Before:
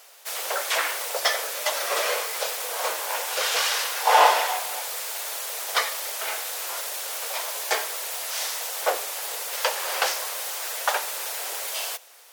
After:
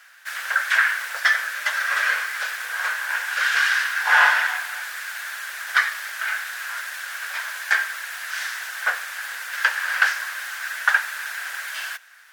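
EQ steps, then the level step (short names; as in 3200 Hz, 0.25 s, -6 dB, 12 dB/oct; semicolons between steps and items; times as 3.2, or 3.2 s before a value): resonant high-pass 1600 Hz, resonance Q 7.1; tilt -2.5 dB/oct; 0.0 dB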